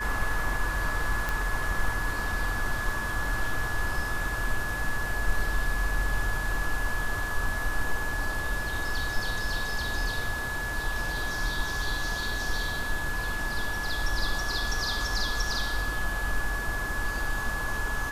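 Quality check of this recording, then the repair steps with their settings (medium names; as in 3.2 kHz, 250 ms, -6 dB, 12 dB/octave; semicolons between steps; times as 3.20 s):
whine 1.7 kHz -32 dBFS
1.29 s: pop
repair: de-click; band-stop 1.7 kHz, Q 30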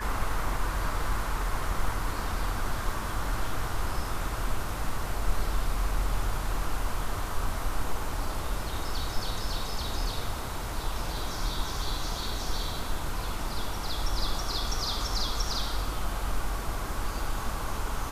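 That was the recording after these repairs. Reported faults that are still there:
nothing left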